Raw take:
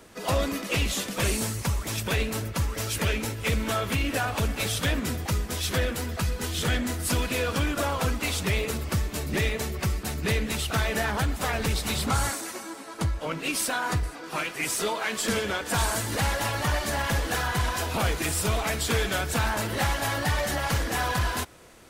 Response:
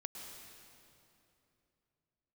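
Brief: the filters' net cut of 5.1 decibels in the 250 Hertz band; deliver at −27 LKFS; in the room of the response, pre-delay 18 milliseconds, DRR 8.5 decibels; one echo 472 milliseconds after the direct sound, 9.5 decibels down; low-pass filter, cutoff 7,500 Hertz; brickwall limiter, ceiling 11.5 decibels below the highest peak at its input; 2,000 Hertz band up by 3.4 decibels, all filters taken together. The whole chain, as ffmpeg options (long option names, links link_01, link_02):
-filter_complex "[0:a]lowpass=7500,equalizer=frequency=250:width_type=o:gain=-7,equalizer=frequency=2000:width_type=o:gain=4.5,alimiter=level_in=1dB:limit=-24dB:level=0:latency=1,volume=-1dB,aecho=1:1:472:0.335,asplit=2[link_01][link_02];[1:a]atrim=start_sample=2205,adelay=18[link_03];[link_02][link_03]afir=irnorm=-1:irlink=0,volume=-6dB[link_04];[link_01][link_04]amix=inputs=2:normalize=0,volume=5dB"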